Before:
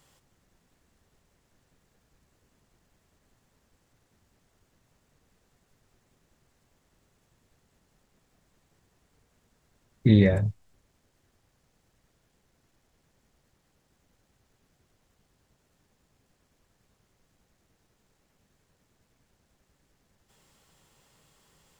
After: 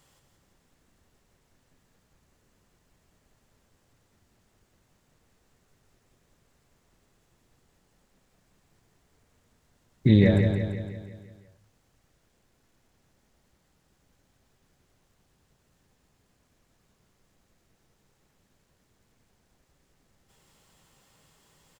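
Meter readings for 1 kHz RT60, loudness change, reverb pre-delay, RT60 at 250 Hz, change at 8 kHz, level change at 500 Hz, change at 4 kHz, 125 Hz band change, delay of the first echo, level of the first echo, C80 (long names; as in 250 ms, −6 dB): no reverb audible, −1.0 dB, no reverb audible, no reverb audible, can't be measured, +1.0 dB, +1.5 dB, +1.5 dB, 170 ms, −6.0 dB, no reverb audible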